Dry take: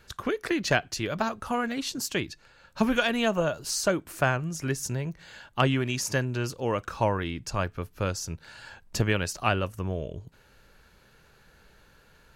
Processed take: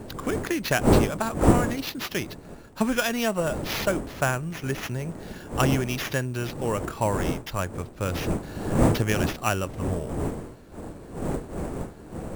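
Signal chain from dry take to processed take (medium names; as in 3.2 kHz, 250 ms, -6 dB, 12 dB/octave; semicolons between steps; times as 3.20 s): wind noise 390 Hz -29 dBFS; sample-rate reducer 8.5 kHz, jitter 0%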